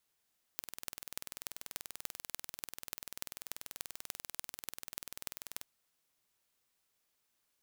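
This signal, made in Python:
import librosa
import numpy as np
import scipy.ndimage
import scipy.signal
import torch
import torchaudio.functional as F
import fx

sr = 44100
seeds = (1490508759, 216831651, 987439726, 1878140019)

y = fx.impulse_train(sr, length_s=5.05, per_s=20.5, accent_every=6, level_db=-10.0)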